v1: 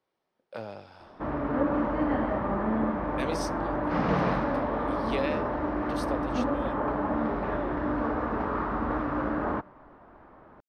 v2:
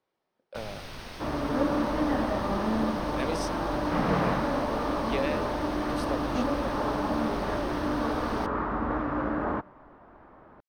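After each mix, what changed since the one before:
first sound: unmuted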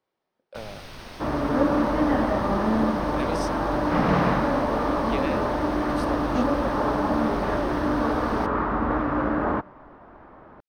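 second sound +5.0 dB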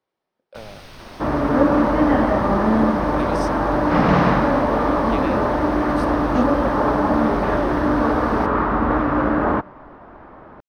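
second sound +5.5 dB

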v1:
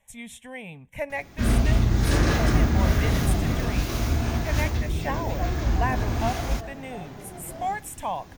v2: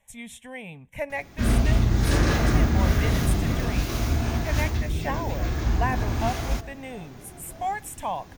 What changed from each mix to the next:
second sound −7.0 dB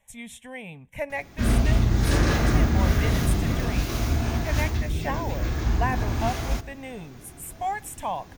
second sound −6.5 dB

